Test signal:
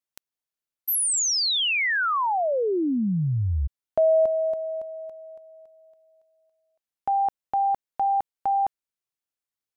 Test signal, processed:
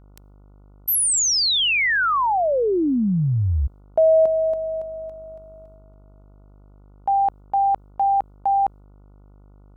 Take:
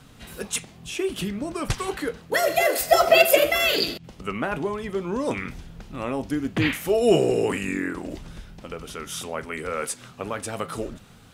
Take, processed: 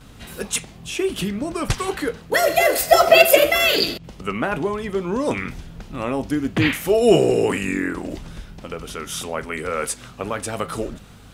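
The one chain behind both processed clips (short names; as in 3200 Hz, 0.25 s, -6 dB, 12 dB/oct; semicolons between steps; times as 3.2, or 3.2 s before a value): gate with hold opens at -45 dBFS, range -7 dB; buzz 50 Hz, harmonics 29, -53 dBFS -7 dB/oct; gain +4 dB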